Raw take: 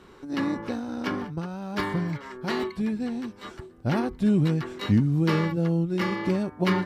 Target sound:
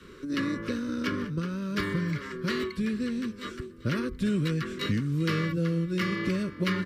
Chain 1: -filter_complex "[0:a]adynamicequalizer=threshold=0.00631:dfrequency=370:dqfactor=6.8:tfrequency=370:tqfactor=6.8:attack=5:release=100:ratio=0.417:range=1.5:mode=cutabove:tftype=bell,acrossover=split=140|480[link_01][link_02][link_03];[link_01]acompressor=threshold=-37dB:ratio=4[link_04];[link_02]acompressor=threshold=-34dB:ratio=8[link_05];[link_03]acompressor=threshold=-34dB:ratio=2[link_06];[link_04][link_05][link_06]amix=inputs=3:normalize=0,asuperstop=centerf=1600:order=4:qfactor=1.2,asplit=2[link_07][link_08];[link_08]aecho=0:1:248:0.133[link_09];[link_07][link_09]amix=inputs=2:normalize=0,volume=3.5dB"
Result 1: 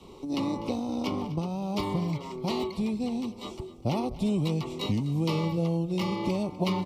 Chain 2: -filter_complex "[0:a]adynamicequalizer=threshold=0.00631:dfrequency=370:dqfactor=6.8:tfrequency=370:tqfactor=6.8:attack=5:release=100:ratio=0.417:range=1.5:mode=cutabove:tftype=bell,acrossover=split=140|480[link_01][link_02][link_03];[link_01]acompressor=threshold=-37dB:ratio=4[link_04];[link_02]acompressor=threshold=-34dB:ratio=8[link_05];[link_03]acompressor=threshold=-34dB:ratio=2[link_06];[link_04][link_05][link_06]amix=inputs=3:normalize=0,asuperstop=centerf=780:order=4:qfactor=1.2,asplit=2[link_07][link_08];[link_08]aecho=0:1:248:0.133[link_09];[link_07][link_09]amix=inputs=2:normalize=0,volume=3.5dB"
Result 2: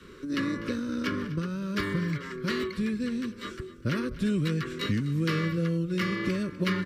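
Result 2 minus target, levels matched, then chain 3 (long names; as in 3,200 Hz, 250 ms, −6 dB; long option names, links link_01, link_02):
echo 144 ms early
-filter_complex "[0:a]adynamicequalizer=threshold=0.00631:dfrequency=370:dqfactor=6.8:tfrequency=370:tqfactor=6.8:attack=5:release=100:ratio=0.417:range=1.5:mode=cutabove:tftype=bell,acrossover=split=140|480[link_01][link_02][link_03];[link_01]acompressor=threshold=-37dB:ratio=4[link_04];[link_02]acompressor=threshold=-34dB:ratio=8[link_05];[link_03]acompressor=threshold=-34dB:ratio=2[link_06];[link_04][link_05][link_06]amix=inputs=3:normalize=0,asuperstop=centerf=780:order=4:qfactor=1.2,asplit=2[link_07][link_08];[link_08]aecho=0:1:392:0.133[link_09];[link_07][link_09]amix=inputs=2:normalize=0,volume=3.5dB"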